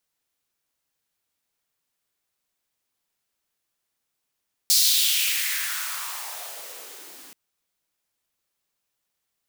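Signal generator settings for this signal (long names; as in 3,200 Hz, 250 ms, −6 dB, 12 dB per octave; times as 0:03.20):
filter sweep on noise white, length 2.63 s highpass, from 4,900 Hz, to 250 Hz, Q 2.8, exponential, gain ramp −27 dB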